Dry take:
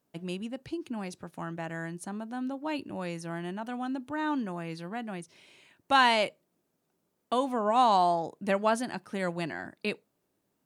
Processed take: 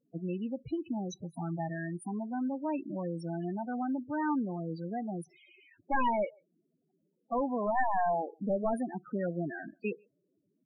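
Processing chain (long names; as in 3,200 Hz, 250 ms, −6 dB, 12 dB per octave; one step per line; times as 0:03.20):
wavefolder on the positive side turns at −23 dBFS
0:01.11–0:01.73: thirty-one-band graphic EQ 160 Hz +4 dB, 800 Hz +4 dB, 2,000 Hz +5 dB, 4,000 Hz +9 dB, 6,300 Hz +12 dB, 10,000 Hz +6 dB
in parallel at −0.5 dB: downward compressor 10 to 1, threshold −40 dBFS, peak gain reduction 20 dB
on the sum: far-end echo of a speakerphone 140 ms, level −30 dB
spectral peaks only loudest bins 8
level −1.5 dB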